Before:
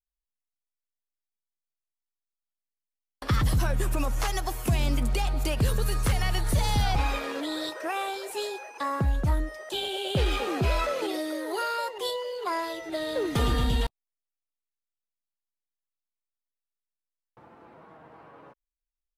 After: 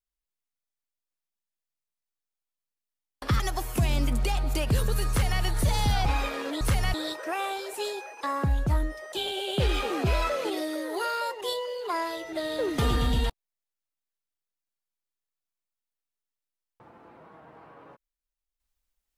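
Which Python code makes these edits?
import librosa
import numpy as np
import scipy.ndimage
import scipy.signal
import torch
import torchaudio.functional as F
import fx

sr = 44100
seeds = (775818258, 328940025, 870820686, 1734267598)

y = fx.edit(x, sr, fx.cut(start_s=3.4, length_s=0.9),
    fx.duplicate(start_s=5.99, length_s=0.33, to_s=7.51), tone=tone)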